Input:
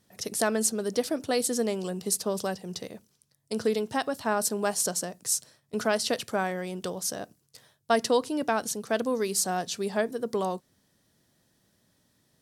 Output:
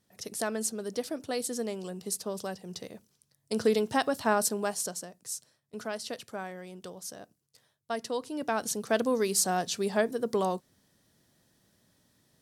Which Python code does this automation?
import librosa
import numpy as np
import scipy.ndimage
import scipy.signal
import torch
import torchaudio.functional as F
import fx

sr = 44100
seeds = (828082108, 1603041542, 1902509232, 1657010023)

y = fx.gain(x, sr, db=fx.line((2.43, -6.0), (3.74, 1.5), (4.31, 1.5), (5.11, -10.0), (8.09, -10.0), (8.77, 0.5)))